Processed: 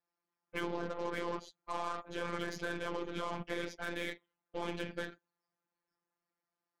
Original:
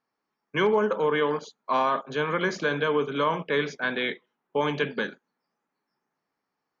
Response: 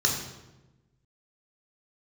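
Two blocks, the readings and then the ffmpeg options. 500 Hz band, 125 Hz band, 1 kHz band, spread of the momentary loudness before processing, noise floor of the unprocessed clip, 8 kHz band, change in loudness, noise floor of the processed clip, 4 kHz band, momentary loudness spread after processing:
−15.0 dB, −11.5 dB, −13.5 dB, 9 LU, −83 dBFS, can't be measured, −13.5 dB, below −85 dBFS, −12.0 dB, 6 LU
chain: -af "afftfilt=real='hypot(re,im)*cos(2*PI*random(0))':imag='hypot(re,im)*sin(2*PI*random(1))':win_size=512:overlap=0.75,lowshelf=frequency=65:gain=-8.5,alimiter=level_in=2dB:limit=-24dB:level=0:latency=1:release=47,volume=-2dB,aeval=exprs='0.0501*(cos(1*acos(clip(val(0)/0.0501,-1,1)))-cos(1*PI/2))+0.00398*(cos(8*acos(clip(val(0)/0.0501,-1,1)))-cos(8*PI/2))':channel_layout=same,afftfilt=real='hypot(re,im)*cos(PI*b)':imag='0':win_size=1024:overlap=0.75,equalizer=frequency=270:width_type=o:width=0.34:gain=4"

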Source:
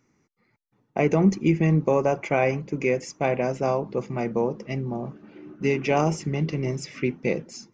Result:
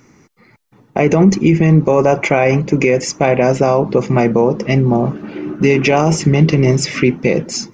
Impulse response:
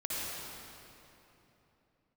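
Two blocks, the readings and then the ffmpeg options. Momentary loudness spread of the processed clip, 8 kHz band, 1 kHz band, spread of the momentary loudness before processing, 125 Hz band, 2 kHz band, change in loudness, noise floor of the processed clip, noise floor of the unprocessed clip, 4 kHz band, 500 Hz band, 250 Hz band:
6 LU, can't be measured, +10.0 dB, 10 LU, +12.5 dB, +11.5 dB, +11.5 dB, −50 dBFS, −69 dBFS, +15.5 dB, +11.0 dB, +11.5 dB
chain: -filter_complex "[0:a]asplit=2[link_01][link_02];[link_02]acompressor=threshold=-31dB:ratio=6,volume=1dB[link_03];[link_01][link_03]amix=inputs=2:normalize=0,alimiter=level_in=13.5dB:limit=-1dB:release=50:level=0:latency=1,volume=-1dB"

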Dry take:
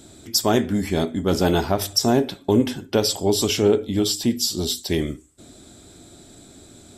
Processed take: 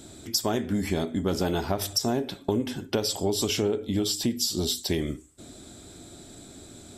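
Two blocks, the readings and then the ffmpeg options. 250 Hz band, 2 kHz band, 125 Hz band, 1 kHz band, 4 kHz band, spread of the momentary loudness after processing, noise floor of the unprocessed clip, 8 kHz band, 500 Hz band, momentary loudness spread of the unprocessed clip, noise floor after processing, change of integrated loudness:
−6.5 dB, −6.0 dB, −5.5 dB, −7.0 dB, −5.0 dB, 20 LU, −48 dBFS, −4.5 dB, −7.5 dB, 5 LU, −48 dBFS, −6.0 dB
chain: -af "acompressor=threshold=-23dB:ratio=5"

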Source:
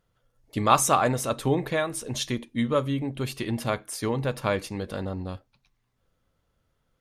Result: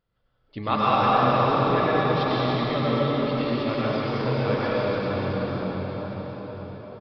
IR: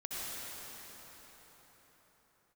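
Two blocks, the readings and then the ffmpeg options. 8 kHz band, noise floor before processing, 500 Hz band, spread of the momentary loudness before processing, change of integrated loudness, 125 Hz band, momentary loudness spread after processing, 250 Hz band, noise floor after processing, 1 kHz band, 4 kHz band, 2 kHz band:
below −25 dB, −74 dBFS, +4.5 dB, 12 LU, +3.0 dB, +3.5 dB, 15 LU, +3.5 dB, −69 dBFS, +4.5 dB, +2.5 dB, +3.5 dB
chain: -filter_complex "[1:a]atrim=start_sample=2205,asetrate=30429,aresample=44100[link_01];[0:a][link_01]afir=irnorm=-1:irlink=0,aresample=11025,aresample=44100,volume=-2.5dB"

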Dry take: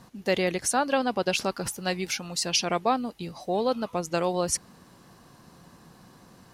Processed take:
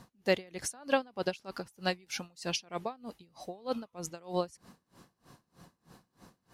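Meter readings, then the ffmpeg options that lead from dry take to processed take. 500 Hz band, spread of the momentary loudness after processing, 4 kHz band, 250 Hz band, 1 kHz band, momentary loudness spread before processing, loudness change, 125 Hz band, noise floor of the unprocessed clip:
−7.0 dB, 12 LU, −9.0 dB, −9.0 dB, −10.5 dB, 6 LU, −8.5 dB, −8.0 dB, −55 dBFS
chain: -af "aeval=exprs='val(0)*pow(10,-28*(0.5-0.5*cos(2*PI*3.2*n/s))/20)':channel_layout=same,volume=-1.5dB"

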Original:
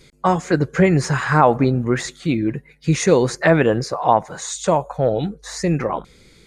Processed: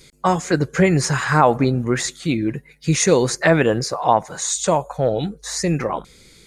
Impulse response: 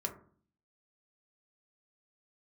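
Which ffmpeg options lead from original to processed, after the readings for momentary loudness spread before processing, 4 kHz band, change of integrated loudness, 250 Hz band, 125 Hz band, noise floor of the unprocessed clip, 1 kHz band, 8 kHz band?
9 LU, +4.0 dB, −0.5 dB, −1.0 dB, −1.0 dB, −51 dBFS, −0.5 dB, +6.0 dB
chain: -af "highshelf=frequency=4100:gain=9.5,volume=-1dB"

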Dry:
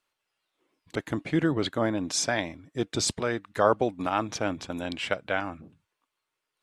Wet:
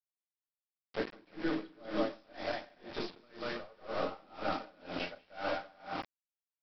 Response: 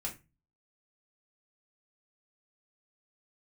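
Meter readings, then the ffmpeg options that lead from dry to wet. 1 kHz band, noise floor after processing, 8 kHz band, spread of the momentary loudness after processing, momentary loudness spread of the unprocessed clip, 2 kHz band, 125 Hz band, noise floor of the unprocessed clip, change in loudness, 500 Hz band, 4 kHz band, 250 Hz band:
−9.5 dB, below −85 dBFS, below −30 dB, 7 LU, 10 LU, −9.5 dB, −17.5 dB, −84 dBFS, −11.0 dB, −9.5 dB, −11.5 dB, −10.5 dB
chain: -filter_complex "[0:a]aecho=1:1:190|323|416.1|481.3|526.9:0.631|0.398|0.251|0.158|0.1,acontrast=44,highpass=340,flanger=delay=4.9:depth=8.2:regen=-83:speed=0.69:shape=sinusoidal,aeval=exprs='(tanh(10*val(0)+0.15)-tanh(0.15))/10':channel_layout=same,alimiter=level_in=0.5dB:limit=-24dB:level=0:latency=1:release=78,volume=-0.5dB,areverse,acompressor=threshold=-41dB:ratio=12,areverse,highshelf=frequency=2700:gain=-12[link_01];[1:a]atrim=start_sample=2205[link_02];[link_01][link_02]afir=irnorm=-1:irlink=0,aresample=11025,aeval=exprs='val(0)*gte(abs(val(0)),0.00398)':channel_layout=same,aresample=44100,aeval=exprs='val(0)*pow(10,-29*(0.5-0.5*cos(2*PI*2*n/s))/20)':channel_layout=same,volume=12.5dB"

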